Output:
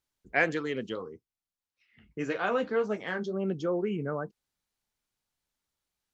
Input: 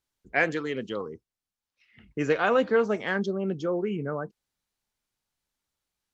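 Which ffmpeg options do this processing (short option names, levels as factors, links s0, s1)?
-filter_complex "[0:a]asplit=3[s0][s1][s2];[s0]afade=t=out:st=0.94:d=0.02[s3];[s1]flanger=delay=9.2:depth=4.2:regen=-39:speed=1.7:shape=triangular,afade=t=in:st=0.94:d=0.02,afade=t=out:st=3.32:d=0.02[s4];[s2]afade=t=in:st=3.32:d=0.02[s5];[s3][s4][s5]amix=inputs=3:normalize=0,volume=0.841"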